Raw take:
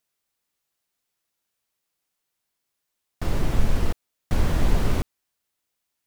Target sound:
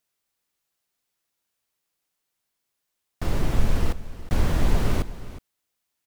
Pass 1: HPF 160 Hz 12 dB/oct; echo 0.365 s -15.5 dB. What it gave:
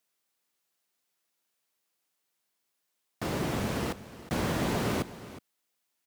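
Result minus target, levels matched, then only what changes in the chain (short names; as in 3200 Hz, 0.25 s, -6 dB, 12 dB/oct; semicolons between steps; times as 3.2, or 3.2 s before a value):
125 Hz band -3.5 dB
remove: HPF 160 Hz 12 dB/oct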